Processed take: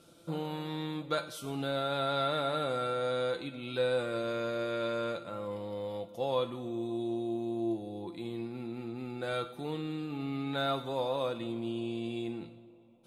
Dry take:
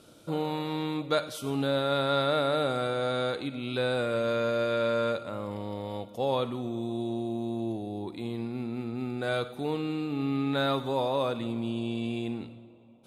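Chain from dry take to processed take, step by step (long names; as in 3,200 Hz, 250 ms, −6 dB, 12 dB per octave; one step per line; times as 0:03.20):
tuned comb filter 170 Hz, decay 0.15 s, harmonics all, mix 80%
level +3 dB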